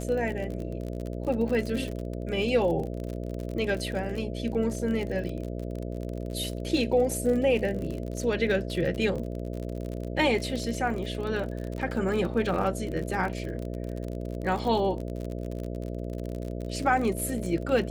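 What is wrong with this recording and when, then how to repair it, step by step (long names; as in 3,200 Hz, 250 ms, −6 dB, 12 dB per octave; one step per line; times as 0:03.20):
mains buzz 60 Hz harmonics 11 −34 dBFS
surface crackle 44 per second −32 dBFS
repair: click removal
hum removal 60 Hz, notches 11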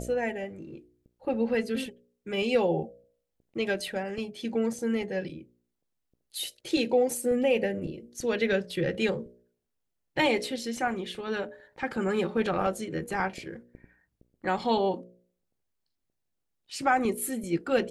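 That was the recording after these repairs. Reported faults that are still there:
none of them is left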